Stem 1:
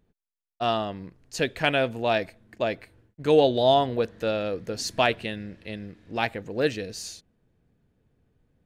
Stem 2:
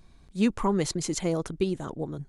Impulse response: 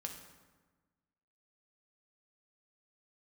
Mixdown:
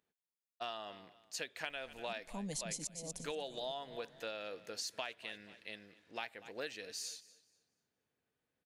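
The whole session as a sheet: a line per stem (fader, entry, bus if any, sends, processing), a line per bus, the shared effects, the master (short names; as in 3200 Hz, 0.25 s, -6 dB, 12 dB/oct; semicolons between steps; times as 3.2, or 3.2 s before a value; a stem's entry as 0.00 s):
-5.0 dB, 0.00 s, no send, echo send -21 dB, HPF 1400 Hz 6 dB/oct
-3.5 dB, 1.70 s, no send, echo send -11 dB, high shelf 4100 Hz +12 dB; auto swell 0.775 s; fixed phaser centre 360 Hz, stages 6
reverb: off
echo: feedback echo 0.24 s, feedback 26%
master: compressor 10:1, threshold -38 dBFS, peak gain reduction 13.5 dB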